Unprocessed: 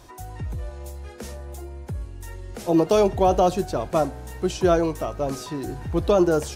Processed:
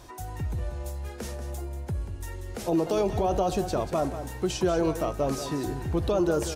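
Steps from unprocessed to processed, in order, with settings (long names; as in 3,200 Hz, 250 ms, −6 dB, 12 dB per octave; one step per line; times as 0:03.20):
brickwall limiter −17 dBFS, peak gain reduction 10 dB
on a send: single-tap delay 187 ms −11 dB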